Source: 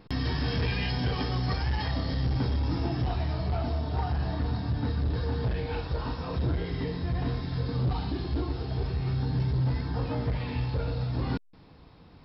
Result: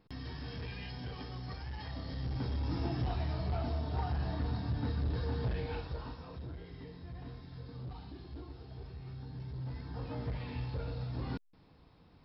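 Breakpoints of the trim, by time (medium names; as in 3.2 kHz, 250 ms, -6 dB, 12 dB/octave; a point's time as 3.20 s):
1.70 s -14 dB
2.83 s -5.5 dB
5.66 s -5.5 dB
6.46 s -16.5 dB
9.37 s -16.5 dB
10.25 s -8.5 dB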